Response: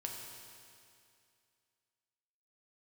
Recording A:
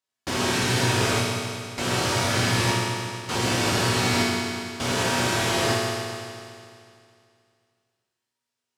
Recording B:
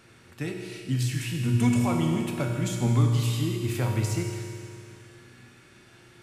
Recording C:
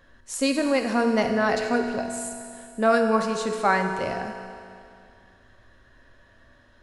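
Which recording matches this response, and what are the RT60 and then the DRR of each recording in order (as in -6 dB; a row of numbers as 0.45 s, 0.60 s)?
B; 2.4 s, 2.4 s, 2.4 s; -6.0 dB, 0.0 dB, 4.0 dB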